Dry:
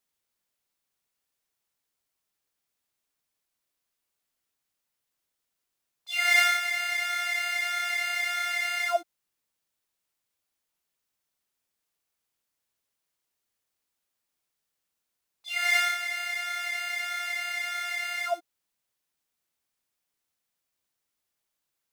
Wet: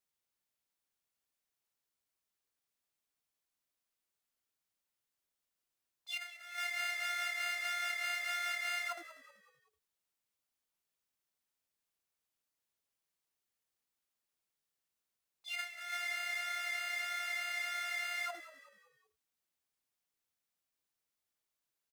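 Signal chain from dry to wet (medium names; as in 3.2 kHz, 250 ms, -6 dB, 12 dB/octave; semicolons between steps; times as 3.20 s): compressor with a negative ratio -30 dBFS, ratio -0.5; frequency-shifting echo 190 ms, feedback 43%, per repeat -66 Hz, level -15 dB; trim -8.5 dB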